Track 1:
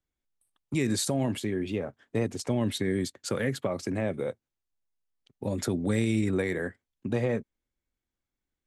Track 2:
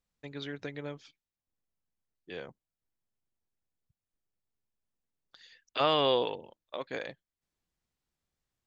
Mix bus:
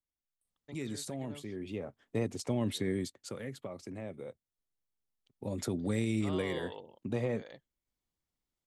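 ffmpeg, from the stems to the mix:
ffmpeg -i stem1.wav -i stem2.wav -filter_complex "[0:a]volume=2.5dB,afade=type=in:start_time=1.48:duration=0.62:silence=0.421697,afade=type=out:start_time=2.9:duration=0.46:silence=0.398107,afade=type=in:start_time=5.1:duration=0.49:silence=0.446684,asplit=2[link_01][link_02];[1:a]bandreject=frequency=2500:width=6,adelay=450,volume=-5.5dB[link_03];[link_02]apad=whole_len=402150[link_04];[link_03][link_04]sidechaincompress=threshold=-40dB:ratio=8:attack=8.8:release=287[link_05];[link_01][link_05]amix=inputs=2:normalize=0,equalizer=frequency=1600:width_type=o:width=0.33:gain=-5" out.wav

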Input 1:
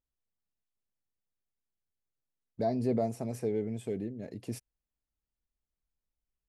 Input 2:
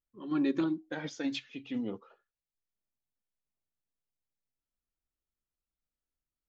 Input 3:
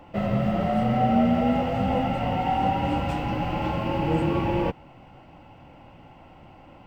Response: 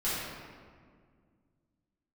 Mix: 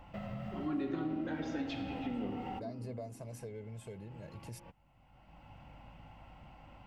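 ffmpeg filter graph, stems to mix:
-filter_complex "[0:a]aecho=1:1:1.9:0.65,volume=-2.5dB,asplit=2[link_01][link_02];[1:a]lowpass=frequency=2600:poles=1,adelay=350,volume=-0.5dB,asplit=2[link_03][link_04];[link_04]volume=-9.5dB[link_05];[2:a]aeval=exprs='val(0)+0.00282*(sin(2*PI*50*n/s)+sin(2*PI*2*50*n/s)/2+sin(2*PI*3*50*n/s)/3+sin(2*PI*4*50*n/s)/4+sin(2*PI*5*50*n/s)/5)':channel_layout=same,volume=-5.5dB[link_06];[link_02]apad=whole_len=302615[link_07];[link_06][link_07]sidechaincompress=threshold=-57dB:ratio=8:attack=8.7:release=630[link_08];[link_01][link_08]amix=inputs=2:normalize=0,equalizer=frequency=380:width_type=o:width=1:gain=-10,acompressor=threshold=-46dB:ratio=2,volume=0dB[link_09];[3:a]atrim=start_sample=2205[link_10];[link_05][link_10]afir=irnorm=-1:irlink=0[link_11];[link_03][link_09][link_11]amix=inputs=3:normalize=0,acompressor=threshold=-37dB:ratio=2.5"

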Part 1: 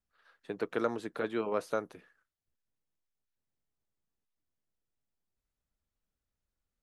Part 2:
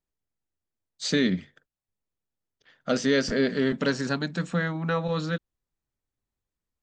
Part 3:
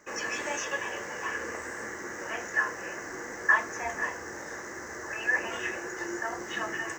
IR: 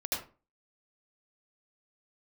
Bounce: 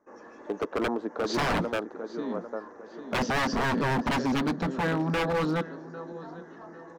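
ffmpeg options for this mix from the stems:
-filter_complex "[0:a]lowshelf=frequency=200:gain=-12,volume=0.5dB,asplit=3[link_01][link_02][link_03];[link_02]volume=-10.5dB[link_04];[1:a]lowpass=6800,highshelf=frequency=2100:gain=11,adelay=250,volume=-4dB,asplit=2[link_05][link_06];[link_06]volume=-18.5dB[link_07];[2:a]bandreject=frequency=3000:width=12,volume=30.5dB,asoftclip=hard,volume=-30.5dB,volume=-17dB[link_08];[link_03]apad=whole_len=308163[link_09];[link_08][link_09]sidechaincompress=threshold=-37dB:ratio=8:attack=9.2:release=151[link_10];[link_04][link_07]amix=inputs=2:normalize=0,aecho=0:1:800|1600|2400|3200|4000:1|0.34|0.116|0.0393|0.0134[link_11];[link_01][link_05][link_10][link_11]amix=inputs=4:normalize=0,firequalizer=gain_entry='entry(130,0);entry(230,13);entry(380,9);entry(920,9);entry(2200,-10);entry(6000,-10);entry(8800,-26)':delay=0.05:min_phase=1,aeval=exprs='0.0891*(abs(mod(val(0)/0.0891+3,4)-2)-1)':channel_layout=same"

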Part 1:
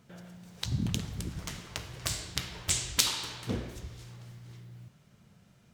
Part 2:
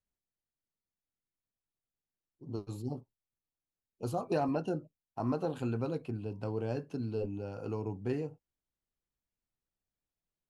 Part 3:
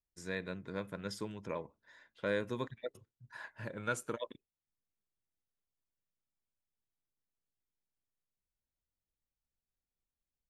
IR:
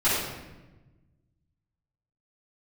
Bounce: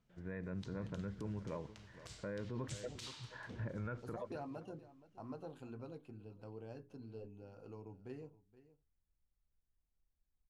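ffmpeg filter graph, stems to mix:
-filter_complex "[0:a]lowpass=7000,volume=-18dB[link_01];[1:a]bandreject=frequency=60:width_type=h:width=6,bandreject=frequency=120:width_type=h:width=6,bandreject=frequency=180:width_type=h:width=6,bandreject=frequency=240:width_type=h:width=6,bandreject=frequency=300:width_type=h:width=6,bandreject=frequency=360:width_type=h:width=6,bandreject=frequency=420:width_type=h:width=6,volume=-14.5dB,asplit=2[link_02][link_03];[link_03]volume=-17.5dB[link_04];[2:a]lowpass=frequency=2200:width=0.5412,lowpass=frequency=2200:width=1.3066,aemphasis=mode=reproduction:type=bsi,volume=-2.5dB,asplit=2[link_05][link_06];[link_06]volume=-19.5dB[link_07];[link_04][link_07]amix=inputs=2:normalize=0,aecho=0:1:473:1[link_08];[link_01][link_02][link_05][link_08]amix=inputs=4:normalize=0,alimiter=level_in=10dB:limit=-24dB:level=0:latency=1:release=38,volume=-10dB"

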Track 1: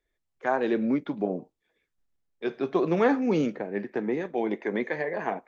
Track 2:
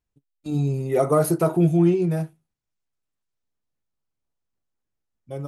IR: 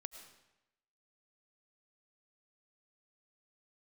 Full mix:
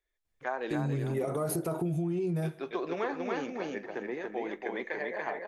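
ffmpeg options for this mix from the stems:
-filter_complex "[0:a]equalizer=frequency=160:width=0.59:gain=-12.5,volume=-3.5dB,asplit=2[link_01][link_02];[link_02]volume=-3dB[link_03];[1:a]alimiter=limit=-17.5dB:level=0:latency=1:release=29,adelay=250,volume=-2.5dB,asplit=2[link_04][link_05];[link_05]volume=-14.5dB[link_06];[2:a]atrim=start_sample=2205[link_07];[link_06][link_07]afir=irnorm=-1:irlink=0[link_08];[link_03]aecho=0:1:283|566|849|1132:1|0.23|0.0529|0.0122[link_09];[link_01][link_04][link_08][link_09]amix=inputs=4:normalize=0,acompressor=threshold=-28dB:ratio=6"

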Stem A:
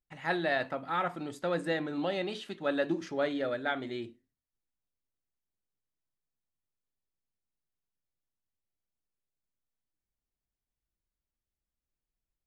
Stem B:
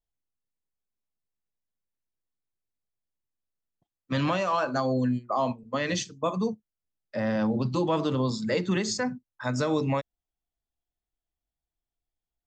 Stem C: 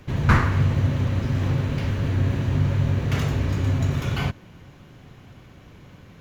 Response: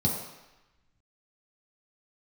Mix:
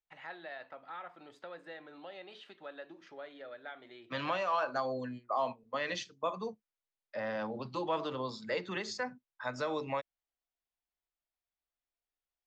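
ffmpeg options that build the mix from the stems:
-filter_complex "[0:a]acompressor=threshold=-44dB:ratio=2.5,volume=-2.5dB[link_01];[1:a]volume=-4.5dB[link_02];[link_01][link_02]amix=inputs=2:normalize=0,acrossover=split=440 4900:gain=0.2 1 0.126[link_03][link_04][link_05];[link_03][link_04][link_05]amix=inputs=3:normalize=0"

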